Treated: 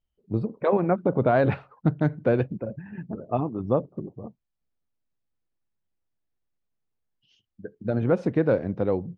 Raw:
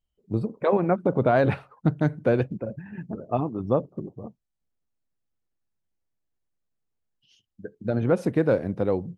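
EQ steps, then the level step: air absorption 130 m; 0.0 dB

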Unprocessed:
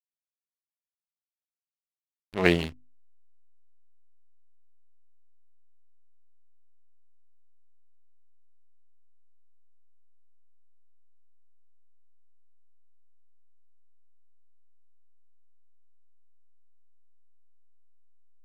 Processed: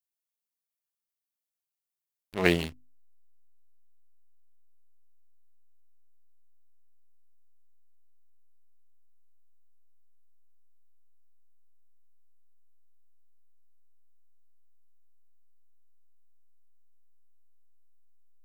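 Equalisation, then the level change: high shelf 8000 Hz +10.5 dB; -2.0 dB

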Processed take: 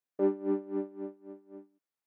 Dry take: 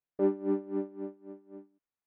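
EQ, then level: HPF 190 Hz; 0.0 dB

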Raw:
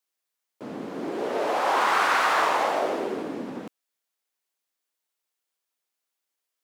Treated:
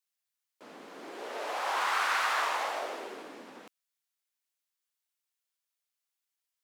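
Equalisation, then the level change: HPF 1400 Hz 6 dB/oct; -3.5 dB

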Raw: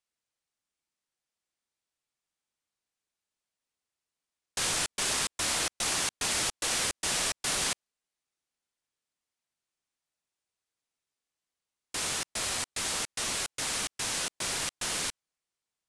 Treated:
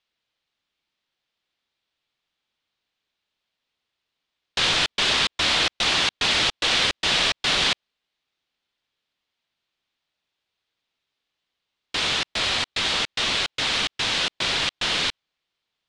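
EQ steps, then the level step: synth low-pass 3600 Hz, resonance Q 2.1; +8.0 dB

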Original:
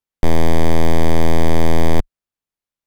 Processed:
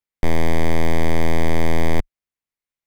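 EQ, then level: bell 2100 Hz +6.5 dB 0.45 oct; -4.0 dB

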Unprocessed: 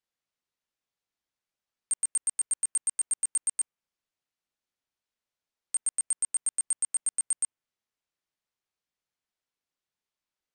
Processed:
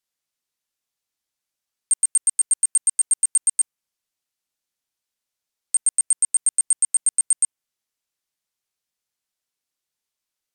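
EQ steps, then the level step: bell 11000 Hz +10 dB 2.5 oct; 0.0 dB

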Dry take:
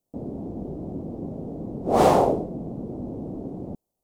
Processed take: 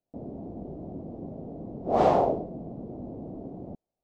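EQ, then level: Gaussian blur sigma 1.6 samples; bell 670 Hz +5 dB 0.39 oct; -6.0 dB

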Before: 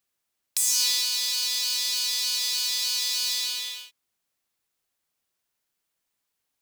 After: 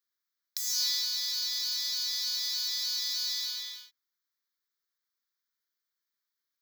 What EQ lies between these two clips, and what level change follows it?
HPF 260 Hz; low shelf 340 Hz -10 dB; fixed phaser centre 2700 Hz, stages 6; -4.0 dB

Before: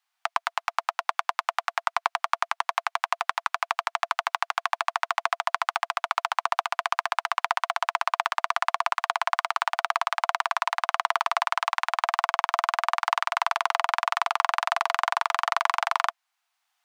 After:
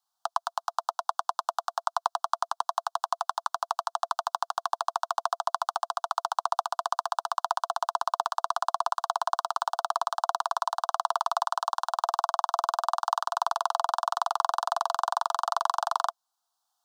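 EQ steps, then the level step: Butterworth band-stop 2200 Hz, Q 0.8; 0.0 dB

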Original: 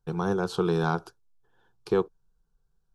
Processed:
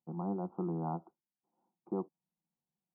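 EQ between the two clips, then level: Gaussian blur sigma 8.1 samples; HPF 120 Hz 24 dB/oct; fixed phaser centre 440 Hz, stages 6; -4.0 dB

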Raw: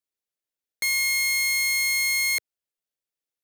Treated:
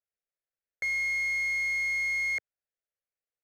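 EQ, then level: air absorption 190 m; fixed phaser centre 1000 Hz, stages 6; 0.0 dB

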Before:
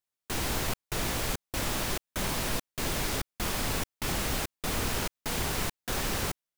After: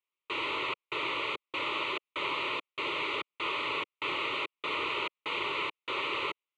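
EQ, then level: speaker cabinet 330–3400 Hz, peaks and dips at 500 Hz -7 dB, 720 Hz -7 dB, 1600 Hz -7 dB, 3300 Hz -4 dB; tilt +1.5 dB/oct; fixed phaser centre 1100 Hz, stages 8; +7.0 dB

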